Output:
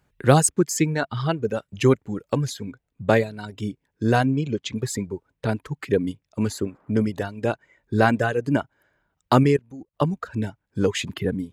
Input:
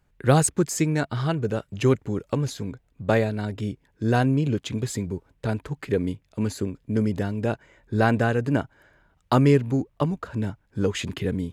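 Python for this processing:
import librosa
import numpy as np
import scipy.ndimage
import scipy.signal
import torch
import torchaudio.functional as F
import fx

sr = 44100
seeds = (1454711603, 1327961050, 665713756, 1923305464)

y = fx.highpass(x, sr, hz=93.0, slope=6)
y = fx.dereverb_blind(y, sr, rt60_s=1.6)
y = fx.lowpass(y, sr, hz=7300.0, slope=24, at=(4.26, 4.76))
y = fx.dmg_noise_band(y, sr, seeds[0], low_hz=190.0, high_hz=1400.0, level_db=-65.0, at=(6.46, 6.91), fade=0.02)
y = fx.level_steps(y, sr, step_db=20, at=(9.43, 9.93), fade=0.02)
y = F.gain(torch.from_numpy(y), 3.5).numpy()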